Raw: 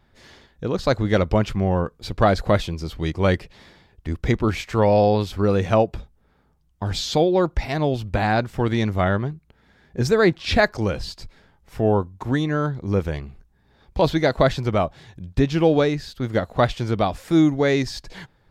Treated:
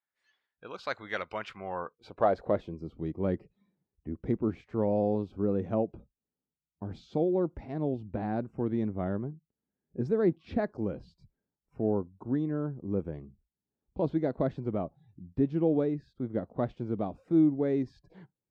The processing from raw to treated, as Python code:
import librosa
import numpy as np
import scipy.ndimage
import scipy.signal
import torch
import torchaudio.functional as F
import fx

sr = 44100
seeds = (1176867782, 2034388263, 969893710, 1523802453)

y = fx.noise_reduce_blind(x, sr, reduce_db=20)
y = fx.filter_sweep_bandpass(y, sr, from_hz=1800.0, to_hz=270.0, start_s=1.46, end_s=2.85, q=1.1)
y = F.gain(torch.from_numpy(y), -6.0).numpy()